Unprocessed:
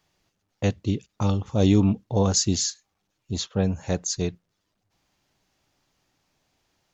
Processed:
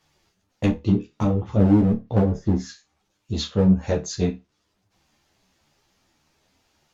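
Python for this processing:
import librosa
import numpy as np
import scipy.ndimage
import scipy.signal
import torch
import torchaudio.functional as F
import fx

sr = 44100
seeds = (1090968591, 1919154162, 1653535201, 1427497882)

p1 = fx.spec_repair(x, sr, seeds[0], start_s=2.22, length_s=0.44, low_hz=2200.0, high_hz=4800.0, source='both')
p2 = fx.env_lowpass_down(p1, sr, base_hz=390.0, full_db=-16.0)
p3 = fx.dynamic_eq(p2, sr, hz=1100.0, q=1.2, threshold_db=-43.0, ratio=4.0, max_db=-3)
p4 = fx.clip_asym(p3, sr, top_db=-23.5, bottom_db=-11.0)
p5 = p4 + fx.room_flutter(p4, sr, wall_m=4.6, rt60_s=0.21, dry=0)
p6 = fx.ensemble(p5, sr)
y = F.gain(torch.from_numpy(p6), 7.5).numpy()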